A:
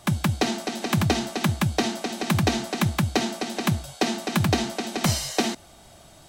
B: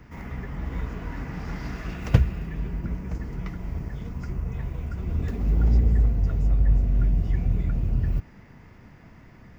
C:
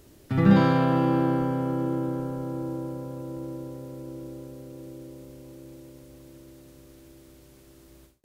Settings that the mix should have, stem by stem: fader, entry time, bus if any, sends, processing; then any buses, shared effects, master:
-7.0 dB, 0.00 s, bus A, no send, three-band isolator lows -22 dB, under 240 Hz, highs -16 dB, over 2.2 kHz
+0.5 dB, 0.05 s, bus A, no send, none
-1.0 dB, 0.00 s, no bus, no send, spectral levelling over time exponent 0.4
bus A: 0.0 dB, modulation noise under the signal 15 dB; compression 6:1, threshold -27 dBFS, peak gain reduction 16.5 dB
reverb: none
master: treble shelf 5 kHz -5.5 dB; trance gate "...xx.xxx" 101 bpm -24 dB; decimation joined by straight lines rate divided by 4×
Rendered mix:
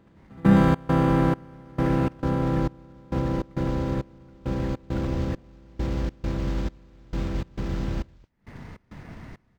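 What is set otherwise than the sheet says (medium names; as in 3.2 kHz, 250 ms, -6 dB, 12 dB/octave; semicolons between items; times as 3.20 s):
stem A -7.0 dB -> -14.0 dB; stem B +0.5 dB -> +7.5 dB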